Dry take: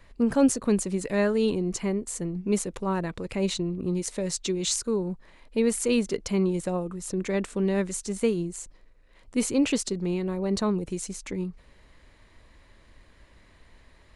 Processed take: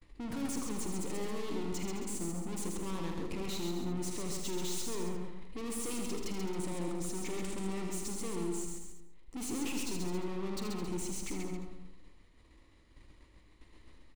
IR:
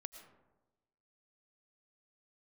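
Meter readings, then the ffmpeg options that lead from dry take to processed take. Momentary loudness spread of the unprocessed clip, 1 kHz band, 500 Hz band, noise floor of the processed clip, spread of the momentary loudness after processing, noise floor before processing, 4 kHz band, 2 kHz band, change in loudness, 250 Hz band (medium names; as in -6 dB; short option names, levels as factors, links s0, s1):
9 LU, -7.0 dB, -13.0 dB, -61 dBFS, 6 LU, -57 dBFS, -8.0 dB, -10.0 dB, -11.0 dB, -11.5 dB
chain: -filter_complex "[0:a]aeval=exprs='(tanh(100*val(0)+0.4)-tanh(0.4))/100':c=same,equalizer=f=315:t=o:w=0.33:g=9,equalizer=f=630:t=o:w=0.33:g=-7,equalizer=f=1600:t=o:w=0.33:g=-8,agate=range=0.0224:threshold=0.00398:ratio=3:detection=peak,aecho=1:1:46.65|134.1|271.1:0.282|0.631|0.282,asplit=2[s0][s1];[1:a]atrim=start_sample=2205,adelay=79[s2];[s1][s2]afir=irnorm=-1:irlink=0,volume=0.794[s3];[s0][s3]amix=inputs=2:normalize=0"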